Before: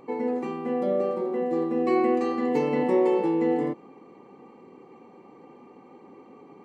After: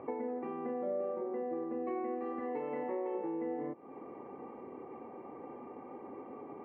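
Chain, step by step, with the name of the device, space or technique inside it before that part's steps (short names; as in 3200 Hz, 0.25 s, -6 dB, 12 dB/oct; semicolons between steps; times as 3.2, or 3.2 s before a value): 2.39–3.15 low shelf 240 Hz -11.5 dB; bass amplifier (compressor 5:1, threshold -39 dBFS, peak gain reduction 18 dB; speaker cabinet 71–2100 Hz, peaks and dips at 79 Hz +8 dB, 180 Hz -9 dB, 640 Hz +6 dB); gain +2 dB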